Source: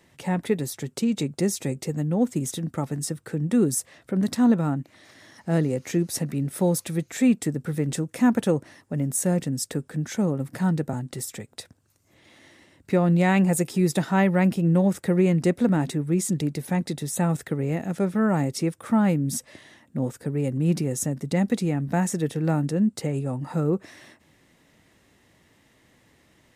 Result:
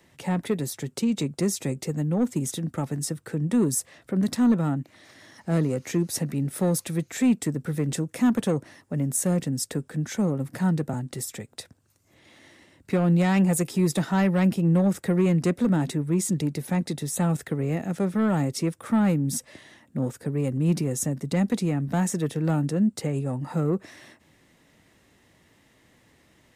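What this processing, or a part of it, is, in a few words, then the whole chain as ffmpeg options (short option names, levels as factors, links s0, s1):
one-band saturation: -filter_complex "[0:a]acrossover=split=240|4500[s0][s1][s2];[s1]asoftclip=type=tanh:threshold=0.0891[s3];[s0][s3][s2]amix=inputs=3:normalize=0"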